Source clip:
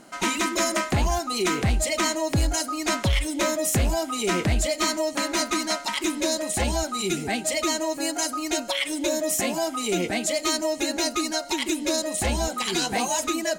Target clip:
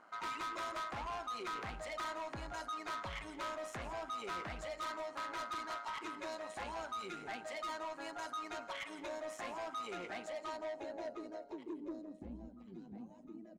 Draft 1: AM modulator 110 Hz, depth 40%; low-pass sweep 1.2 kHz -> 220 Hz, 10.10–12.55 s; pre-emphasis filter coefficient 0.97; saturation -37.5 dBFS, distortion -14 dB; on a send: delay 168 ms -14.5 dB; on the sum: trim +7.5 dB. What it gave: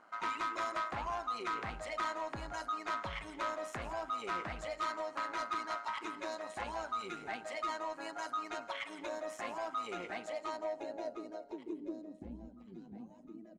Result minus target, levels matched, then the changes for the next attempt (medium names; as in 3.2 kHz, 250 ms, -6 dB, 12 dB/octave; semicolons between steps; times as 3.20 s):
saturation: distortion -7 dB
change: saturation -45.5 dBFS, distortion -7 dB